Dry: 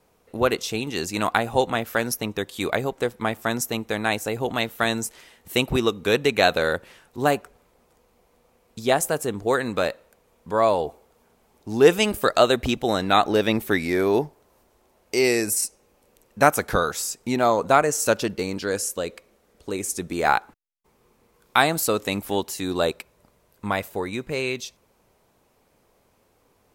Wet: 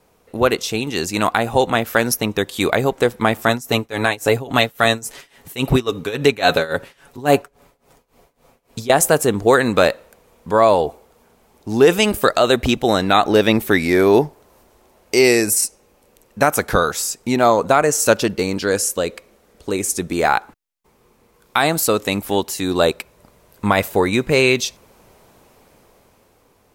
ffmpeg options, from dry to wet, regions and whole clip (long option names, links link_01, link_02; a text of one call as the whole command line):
ffmpeg -i in.wav -filter_complex "[0:a]asettb=1/sr,asplit=3[link_01][link_02][link_03];[link_01]atrim=end=3.484[link_04];[link_02]atrim=start=3.48:end=8.9,asetpts=PTS-STARTPTS,afade=type=in:duration=0.004:curve=qsin,afade=type=out:start_time=5.416:duration=0.004:curve=qsin,aecho=1:1:7.2:0.48,atrim=end_sample=239022,tremolo=f=3.6:d=0.91[link_05];[link_03]atrim=start=8.896[link_06];[link_04][link_05]acrossfade=duration=0.004:curve1=hsin:curve2=qsin[link_07];[link_07][link_06]acrossfade=duration=0.004:curve1=qsin:curve2=hsin,dynaudnorm=framelen=270:gausssize=11:maxgain=11.5dB,alimiter=level_in=6dB:limit=-1dB:release=50:level=0:latency=1,volume=-1dB" out.wav